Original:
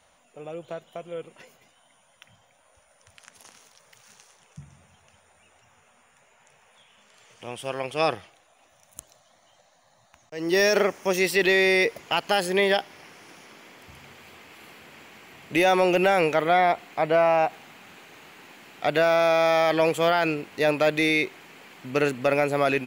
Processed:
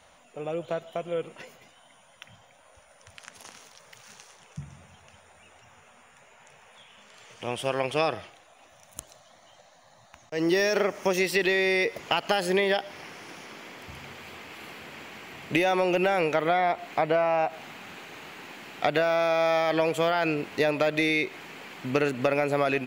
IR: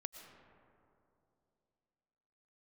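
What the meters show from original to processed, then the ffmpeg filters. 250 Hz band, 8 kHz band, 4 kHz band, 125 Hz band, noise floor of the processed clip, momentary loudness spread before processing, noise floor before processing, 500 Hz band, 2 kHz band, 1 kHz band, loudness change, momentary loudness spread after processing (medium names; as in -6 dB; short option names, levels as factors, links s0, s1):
-1.5 dB, -3.5 dB, -3.0 dB, -1.0 dB, -57 dBFS, 17 LU, -62 dBFS, -3.0 dB, -3.0 dB, -3.0 dB, -3.5 dB, 19 LU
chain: -filter_complex "[0:a]acompressor=threshold=0.0501:ratio=6,asplit=2[s0][s1];[1:a]atrim=start_sample=2205,atrim=end_sample=6174,lowpass=7500[s2];[s1][s2]afir=irnorm=-1:irlink=0,volume=0.794[s3];[s0][s3]amix=inputs=2:normalize=0,volume=1.19"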